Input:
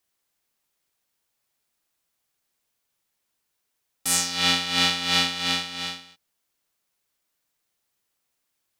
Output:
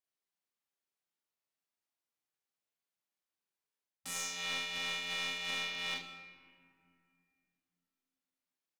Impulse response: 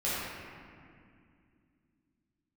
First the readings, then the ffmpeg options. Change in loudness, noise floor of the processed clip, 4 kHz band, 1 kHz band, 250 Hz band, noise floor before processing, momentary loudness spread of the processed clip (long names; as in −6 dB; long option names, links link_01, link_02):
−13.5 dB, below −85 dBFS, −14.5 dB, −15.5 dB, −20.5 dB, −78 dBFS, 14 LU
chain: -filter_complex "[0:a]highpass=140,afwtdn=0.00891,highshelf=frequency=6000:gain=-6.5,alimiter=limit=-13dB:level=0:latency=1:release=432,areverse,acompressor=threshold=-36dB:ratio=6,areverse,aecho=1:1:28|76:0.596|0.299,aeval=exprs='clip(val(0),-1,0.02)':channel_layout=same,asplit=2[link_01][link_02];[link_02]adelay=43,volume=-5dB[link_03];[link_01][link_03]amix=inputs=2:normalize=0,asplit=2[link_04][link_05];[1:a]atrim=start_sample=2205,adelay=129[link_06];[link_05][link_06]afir=irnorm=-1:irlink=0,volume=-20.5dB[link_07];[link_04][link_07]amix=inputs=2:normalize=0"